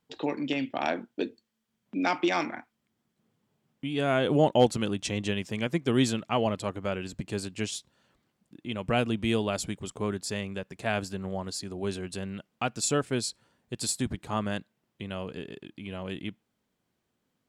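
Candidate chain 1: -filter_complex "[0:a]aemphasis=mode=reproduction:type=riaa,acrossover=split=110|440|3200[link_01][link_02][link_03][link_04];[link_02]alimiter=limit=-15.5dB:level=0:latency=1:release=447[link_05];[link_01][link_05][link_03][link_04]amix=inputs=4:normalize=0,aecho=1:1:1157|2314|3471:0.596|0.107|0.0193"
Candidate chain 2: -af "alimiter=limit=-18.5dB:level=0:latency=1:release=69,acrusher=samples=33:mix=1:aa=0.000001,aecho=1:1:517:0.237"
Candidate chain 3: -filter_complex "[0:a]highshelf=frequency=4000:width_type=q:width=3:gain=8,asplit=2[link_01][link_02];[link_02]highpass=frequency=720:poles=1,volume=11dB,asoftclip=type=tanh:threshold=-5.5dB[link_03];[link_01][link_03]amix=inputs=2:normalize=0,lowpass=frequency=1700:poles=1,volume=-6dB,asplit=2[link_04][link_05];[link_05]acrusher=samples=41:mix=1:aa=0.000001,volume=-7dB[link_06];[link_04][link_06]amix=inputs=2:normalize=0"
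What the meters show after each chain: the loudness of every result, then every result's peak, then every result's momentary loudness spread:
−25.5, −32.5, −28.0 LKFS; −5.5, −18.0, −6.0 dBFS; 11, 14, 14 LU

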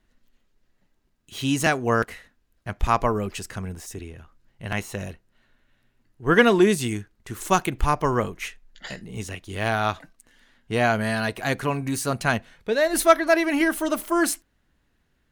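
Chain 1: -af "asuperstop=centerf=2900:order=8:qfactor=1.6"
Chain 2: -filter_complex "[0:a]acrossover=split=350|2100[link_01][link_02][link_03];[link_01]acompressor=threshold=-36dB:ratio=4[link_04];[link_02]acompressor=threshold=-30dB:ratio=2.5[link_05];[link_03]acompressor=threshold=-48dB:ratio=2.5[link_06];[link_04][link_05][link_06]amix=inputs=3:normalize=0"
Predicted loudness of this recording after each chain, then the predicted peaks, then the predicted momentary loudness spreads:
−23.5, −32.0 LKFS; −3.0, −13.5 dBFS; 19, 13 LU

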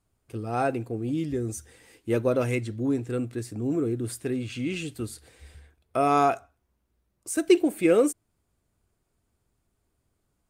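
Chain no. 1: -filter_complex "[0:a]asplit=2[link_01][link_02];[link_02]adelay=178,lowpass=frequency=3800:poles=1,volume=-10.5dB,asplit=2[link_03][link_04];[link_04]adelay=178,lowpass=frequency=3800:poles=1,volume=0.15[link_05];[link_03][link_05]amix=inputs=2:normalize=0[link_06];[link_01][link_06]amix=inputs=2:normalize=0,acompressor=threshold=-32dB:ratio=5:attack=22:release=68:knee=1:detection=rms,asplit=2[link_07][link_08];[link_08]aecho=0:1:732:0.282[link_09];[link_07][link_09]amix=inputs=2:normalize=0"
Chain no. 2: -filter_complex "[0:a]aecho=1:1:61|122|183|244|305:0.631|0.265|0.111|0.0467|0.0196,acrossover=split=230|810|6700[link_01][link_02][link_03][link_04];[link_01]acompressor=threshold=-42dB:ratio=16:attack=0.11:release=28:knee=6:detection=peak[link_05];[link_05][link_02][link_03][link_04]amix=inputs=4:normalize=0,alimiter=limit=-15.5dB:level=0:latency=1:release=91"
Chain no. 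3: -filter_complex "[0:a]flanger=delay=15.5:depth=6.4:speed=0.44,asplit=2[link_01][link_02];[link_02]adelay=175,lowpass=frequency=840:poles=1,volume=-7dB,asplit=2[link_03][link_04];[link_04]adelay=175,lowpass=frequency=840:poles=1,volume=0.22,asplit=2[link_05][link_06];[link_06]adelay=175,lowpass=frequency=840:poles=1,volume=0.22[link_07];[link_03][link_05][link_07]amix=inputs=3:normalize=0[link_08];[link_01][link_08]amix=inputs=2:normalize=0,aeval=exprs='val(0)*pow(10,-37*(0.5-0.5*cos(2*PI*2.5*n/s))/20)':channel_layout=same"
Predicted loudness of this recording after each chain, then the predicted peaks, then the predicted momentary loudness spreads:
−35.0, −28.5, −36.0 LKFS; −19.5, −15.5, −12.5 dBFS; 11, 15, 16 LU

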